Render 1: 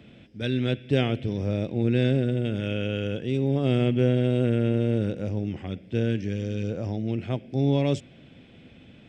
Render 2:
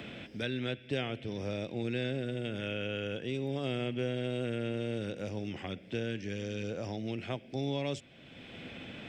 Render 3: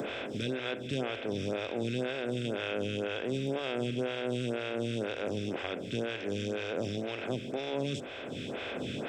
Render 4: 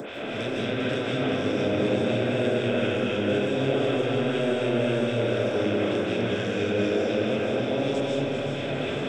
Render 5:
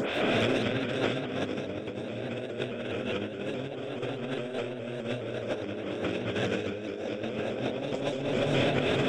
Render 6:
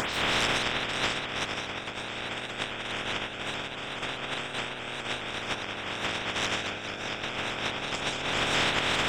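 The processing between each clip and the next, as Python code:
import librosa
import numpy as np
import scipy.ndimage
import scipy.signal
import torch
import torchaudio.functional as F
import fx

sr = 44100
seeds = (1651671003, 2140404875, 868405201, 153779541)

y1 = fx.low_shelf(x, sr, hz=470.0, db=-11.0)
y1 = fx.band_squash(y1, sr, depth_pct=70)
y1 = y1 * librosa.db_to_amplitude(-3.5)
y2 = fx.bin_compress(y1, sr, power=0.4)
y2 = fx.stagger_phaser(y2, sr, hz=2.0)
y3 = fx.echo_split(y2, sr, split_hz=330.0, low_ms=247, high_ms=398, feedback_pct=52, wet_db=-7.5)
y3 = fx.rev_freeverb(y3, sr, rt60_s=3.3, hf_ratio=0.35, predelay_ms=115, drr_db=-6.5)
y4 = fx.over_compress(y3, sr, threshold_db=-30.0, ratio=-0.5)
y4 = fx.vibrato_shape(y4, sr, shape='saw_up', rate_hz=4.8, depth_cents=100.0)
y5 = fx.spec_clip(y4, sr, under_db=25)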